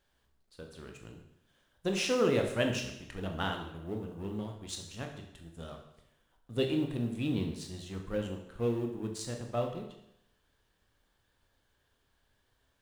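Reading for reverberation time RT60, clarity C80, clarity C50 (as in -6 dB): 0.80 s, 9.0 dB, 6.5 dB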